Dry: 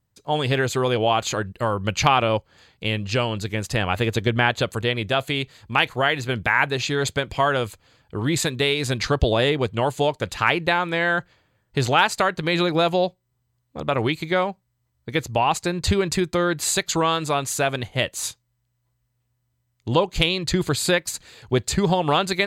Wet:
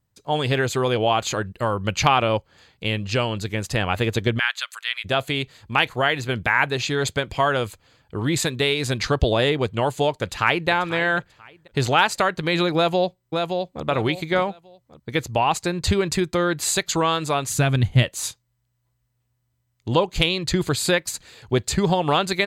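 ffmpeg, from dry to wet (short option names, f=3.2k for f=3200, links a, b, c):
-filter_complex "[0:a]asplit=3[a][b][c];[a]afade=t=out:st=4.38:d=0.02[d];[b]highpass=f=1.3k:w=0.5412,highpass=f=1.3k:w=1.3066,afade=t=in:st=4.38:d=0.02,afade=t=out:st=5.04:d=0.02[e];[c]afade=t=in:st=5.04:d=0.02[f];[d][e][f]amix=inputs=3:normalize=0,asplit=2[g][h];[h]afade=t=in:st=10.18:d=0.01,afade=t=out:st=10.69:d=0.01,aecho=0:1:490|980|1470:0.177828|0.044457|0.0111142[i];[g][i]amix=inputs=2:normalize=0,asplit=2[j][k];[k]afade=t=in:st=12.75:d=0.01,afade=t=out:st=13.85:d=0.01,aecho=0:1:570|1140|1710:0.595662|0.148916|0.0372289[l];[j][l]amix=inputs=2:normalize=0,asplit=3[m][n][o];[m]afade=t=out:st=17.48:d=0.02[p];[n]asubboost=boost=6.5:cutoff=210,afade=t=in:st=17.48:d=0.02,afade=t=out:st=18.02:d=0.02[q];[o]afade=t=in:st=18.02:d=0.02[r];[p][q][r]amix=inputs=3:normalize=0"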